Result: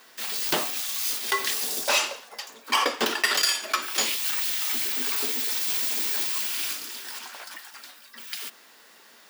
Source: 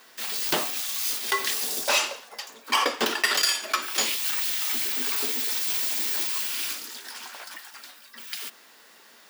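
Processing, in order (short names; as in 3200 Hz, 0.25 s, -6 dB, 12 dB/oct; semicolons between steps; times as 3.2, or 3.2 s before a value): 5.03–7.19 reverse delay 0.58 s, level -11.5 dB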